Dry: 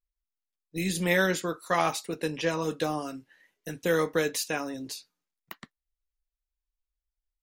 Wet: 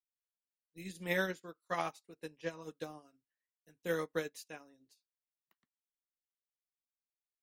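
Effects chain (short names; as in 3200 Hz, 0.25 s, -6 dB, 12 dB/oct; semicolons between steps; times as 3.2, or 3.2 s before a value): upward expander 2.5:1, over -40 dBFS; gain -7.5 dB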